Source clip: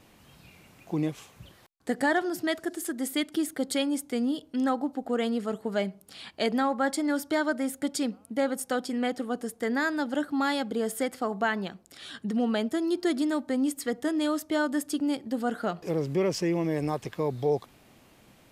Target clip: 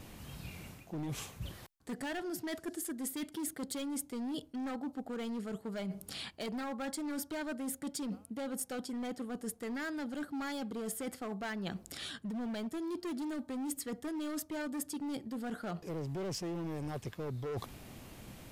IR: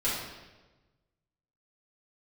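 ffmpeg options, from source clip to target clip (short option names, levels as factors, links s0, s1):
-af "lowshelf=f=160:g=10.5,asoftclip=type=hard:threshold=0.0596,areverse,acompressor=threshold=0.01:ratio=12,areverse,highshelf=f=6200:g=5,volume=1.41"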